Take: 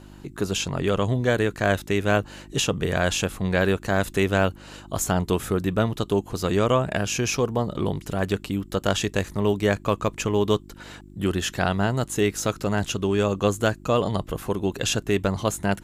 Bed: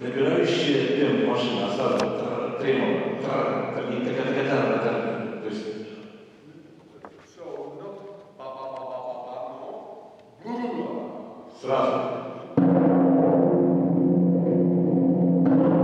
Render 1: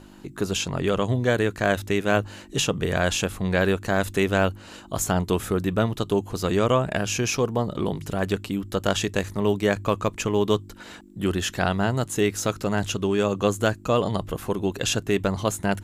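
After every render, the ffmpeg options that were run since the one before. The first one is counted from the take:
-af "bandreject=f=50:t=h:w=4,bandreject=f=100:t=h:w=4,bandreject=f=150:t=h:w=4"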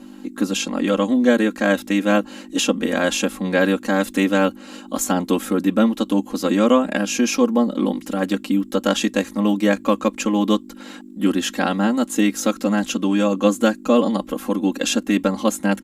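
-af "lowshelf=f=160:t=q:w=3:g=-12.5,aecho=1:1:3.7:1"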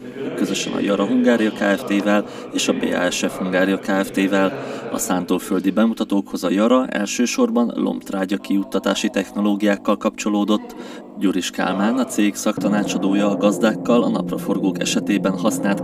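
-filter_complex "[1:a]volume=-6dB[a];[0:a][a]amix=inputs=2:normalize=0"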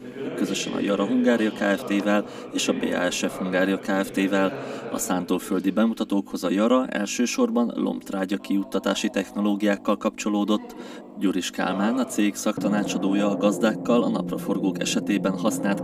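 -af "volume=-4.5dB"

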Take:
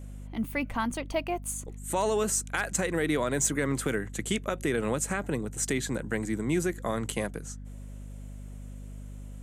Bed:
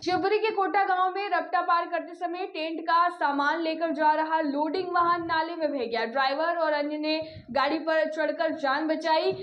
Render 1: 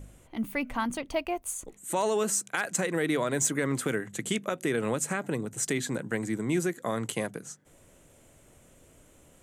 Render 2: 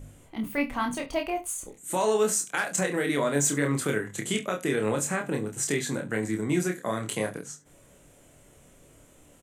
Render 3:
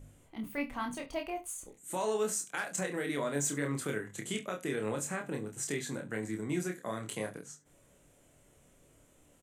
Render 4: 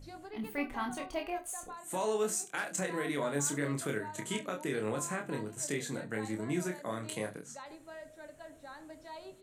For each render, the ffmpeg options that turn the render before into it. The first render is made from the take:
-af "bandreject=f=50:t=h:w=4,bandreject=f=100:t=h:w=4,bandreject=f=150:t=h:w=4,bandreject=f=200:t=h:w=4,bandreject=f=250:t=h:w=4"
-filter_complex "[0:a]asplit=2[a][b];[b]adelay=28,volume=-4dB[c];[a][c]amix=inputs=2:normalize=0,aecho=1:1:21|69:0.316|0.133"
-af "volume=-8dB"
-filter_complex "[1:a]volume=-23dB[a];[0:a][a]amix=inputs=2:normalize=0"

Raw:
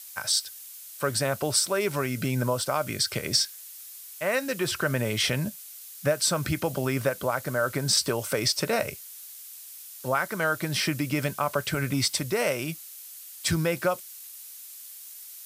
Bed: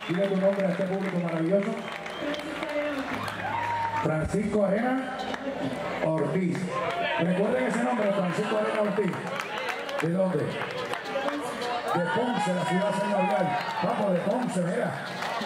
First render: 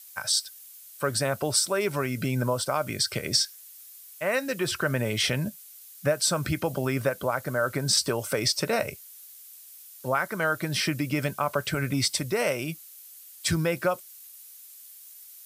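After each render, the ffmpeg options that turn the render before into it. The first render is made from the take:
-af "afftdn=nr=6:nf=-44"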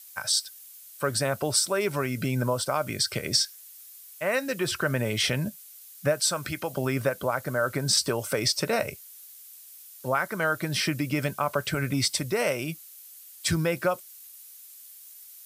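-filter_complex "[0:a]asettb=1/sr,asplit=3[a][b][c];[a]atrim=end=6.204[d];[b]atrim=start=6.2:end=6.77,asetpts=PTS-STARTPTS,afade=t=in:d=0.004:c=qsin,afade=t=out:st=0.566:d=0.004:c=qsin,lowshelf=f=420:g=-9[e];[c]atrim=start=6.766[f];[d][e]acrossfade=d=0.004:c1=hsin:c2=qsin[g];[g][f]acrossfade=d=0.004:c1=qsin:c2=hsin"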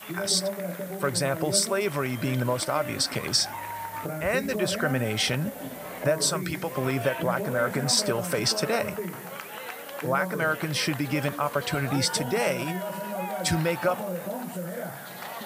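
-filter_complex "[1:a]volume=-7dB[a];[0:a][a]amix=inputs=2:normalize=0"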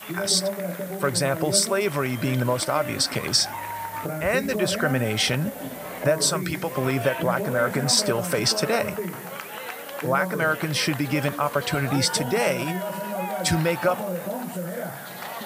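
-af "volume=3dB"

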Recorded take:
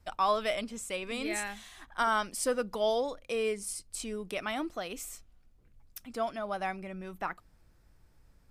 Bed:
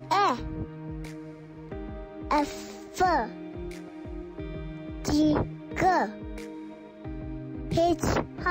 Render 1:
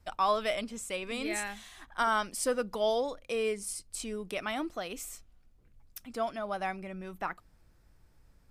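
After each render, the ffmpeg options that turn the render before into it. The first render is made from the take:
-af anull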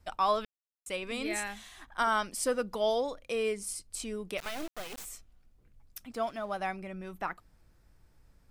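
-filter_complex "[0:a]asplit=3[a][b][c];[a]afade=t=out:st=4.37:d=0.02[d];[b]acrusher=bits=4:dc=4:mix=0:aa=0.000001,afade=t=in:st=4.37:d=0.02,afade=t=out:st=5.04:d=0.02[e];[c]afade=t=in:st=5.04:d=0.02[f];[d][e][f]amix=inputs=3:normalize=0,asettb=1/sr,asplit=3[g][h][i];[g]atrim=end=6.114[j];[h]atrim=start=6.11:end=6.59,asetpts=PTS-STARTPTS,afade=t=in:d=0.004:c=qsin,afade=t=out:st=0.476:d=0.004:c=qsin,aeval=exprs='sgn(val(0))*max(abs(val(0))-0.00112,0)':c=same[k];[i]atrim=start=6.586[l];[j][k]acrossfade=d=0.004:c1=hsin:c2=qsin[m];[m][l]acrossfade=d=0.004:c1=qsin:c2=hsin,asplit=3[n][o][p];[n]atrim=end=0.45,asetpts=PTS-STARTPTS,afade=t=out:st=0.446:d=0.004:c=hsin[q];[o]atrim=start=0.45:end=0.86,asetpts=PTS-STARTPTS,volume=0[r];[p]atrim=start=0.86,asetpts=PTS-STARTPTS,afade=t=in:d=0.004:c=hsin[s];[q][r][s]concat=n=3:v=0:a=1"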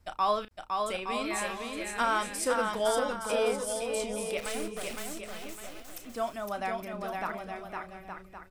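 -filter_complex "[0:a]asplit=2[a][b];[b]adelay=34,volume=-11.5dB[c];[a][c]amix=inputs=2:normalize=0,aecho=1:1:510|867|1117|1292|1414:0.631|0.398|0.251|0.158|0.1"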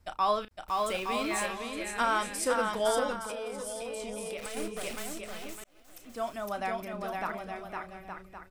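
-filter_complex "[0:a]asettb=1/sr,asplit=3[a][b][c];[a]atrim=end=0.684[d];[b]atrim=start=0.68:end=1.46,asetpts=PTS-STARTPTS,afade=t=in:d=0.004:c=qsin,afade=t=out:st=0.776:d=0.004:c=qsin,aeval=exprs='val(0)+0.5*0.00944*sgn(val(0))':c=same[e];[c]atrim=start=1.456[f];[d][e]acrossfade=d=0.004:c1=hsin:c2=qsin[g];[g][f]acrossfade=d=0.004:c1=qsin:c2=hsin,asettb=1/sr,asplit=3[h][i][j];[h]atrim=end=3.184[k];[i]atrim=start=3.18:end=4.57,asetpts=PTS-STARTPTS,afade=t=in:d=0.004:c=qsin,afade=t=out:st=1.386:d=0.004:c=qsin,acompressor=threshold=-33dB:ratio=12:attack=3.2:release=140:knee=1:detection=peak[l];[j]atrim=start=4.566[m];[k][l]acrossfade=d=0.004:c1=hsin:c2=qsin[n];[n][m]acrossfade=d=0.004:c1=qsin:c2=hsin,asplit=2[o][p];[o]atrim=end=5.64,asetpts=PTS-STARTPTS,afade=t=out:st=5.636:d=0.004:c=hsin[q];[p]atrim=start=5.64,asetpts=PTS-STARTPTS,afade=t=in:d=0.73[r];[q][r]concat=n=2:v=0:a=1"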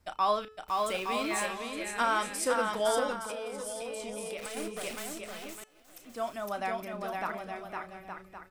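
-af "lowshelf=f=89:g=-8.5,bandreject=f=432.5:t=h:w=4,bandreject=f=865:t=h:w=4,bandreject=f=1.2975k:t=h:w=4,bandreject=f=1.73k:t=h:w=4,bandreject=f=2.1625k:t=h:w=4,bandreject=f=2.595k:t=h:w=4,bandreject=f=3.0275k:t=h:w=4,bandreject=f=3.46k:t=h:w=4,bandreject=f=3.8925k:t=h:w=4,bandreject=f=4.325k:t=h:w=4,bandreject=f=4.7575k:t=h:w=4,bandreject=f=5.19k:t=h:w=4,bandreject=f=5.6225k:t=h:w=4,bandreject=f=6.055k:t=h:w=4,bandreject=f=6.4875k:t=h:w=4,bandreject=f=6.92k:t=h:w=4,bandreject=f=7.3525k:t=h:w=4,bandreject=f=7.785k:t=h:w=4,bandreject=f=8.2175k:t=h:w=4,bandreject=f=8.65k:t=h:w=4,bandreject=f=9.0825k:t=h:w=4,bandreject=f=9.515k:t=h:w=4,bandreject=f=9.9475k:t=h:w=4,bandreject=f=10.38k:t=h:w=4,bandreject=f=10.8125k:t=h:w=4,bandreject=f=11.245k:t=h:w=4,bandreject=f=11.6775k:t=h:w=4,bandreject=f=12.11k:t=h:w=4,bandreject=f=12.5425k:t=h:w=4"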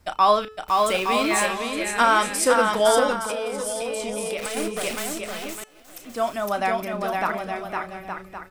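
-af "volume=10dB"

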